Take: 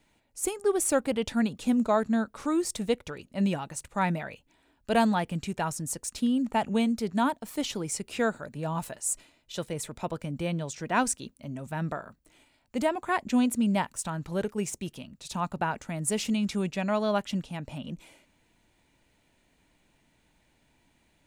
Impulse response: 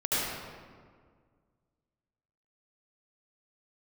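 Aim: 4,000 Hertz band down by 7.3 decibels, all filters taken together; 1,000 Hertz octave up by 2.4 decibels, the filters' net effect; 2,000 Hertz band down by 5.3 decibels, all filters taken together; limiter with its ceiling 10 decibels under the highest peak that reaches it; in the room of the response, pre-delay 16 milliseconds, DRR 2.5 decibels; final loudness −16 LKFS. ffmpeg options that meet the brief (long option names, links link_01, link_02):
-filter_complex "[0:a]equalizer=frequency=1000:width_type=o:gain=5,equalizer=frequency=2000:width_type=o:gain=-8.5,equalizer=frequency=4000:width_type=o:gain=-7,alimiter=limit=-21dB:level=0:latency=1,asplit=2[link_01][link_02];[1:a]atrim=start_sample=2205,adelay=16[link_03];[link_02][link_03]afir=irnorm=-1:irlink=0,volume=-13.5dB[link_04];[link_01][link_04]amix=inputs=2:normalize=0,volume=14dB"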